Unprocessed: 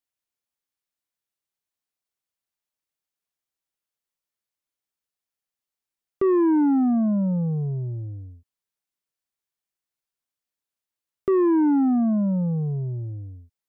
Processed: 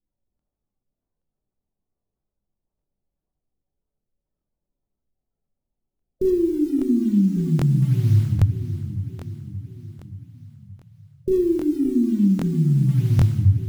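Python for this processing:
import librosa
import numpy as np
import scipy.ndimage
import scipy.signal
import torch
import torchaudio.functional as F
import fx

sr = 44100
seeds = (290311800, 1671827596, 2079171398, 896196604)

p1 = fx.env_lowpass_down(x, sr, base_hz=340.0, full_db=-18.5)
p2 = fx.lowpass(p1, sr, hz=1000.0, slope=6)
p3 = fx.tilt_eq(p2, sr, slope=-3.5)
p4 = fx.over_compress(p3, sr, threshold_db=-22.0, ratio=-1.0)
p5 = fx.spec_gate(p4, sr, threshold_db=-20, keep='strong')
p6 = fx.quant_float(p5, sr, bits=4)
p7 = p6 + fx.echo_feedback(p6, sr, ms=576, feedback_pct=57, wet_db=-12, dry=0)
p8 = fx.room_shoebox(p7, sr, seeds[0], volume_m3=330.0, walls='mixed', distance_m=1.1)
y = fx.buffer_crackle(p8, sr, first_s=0.37, period_s=0.8, block=1024, kind='repeat')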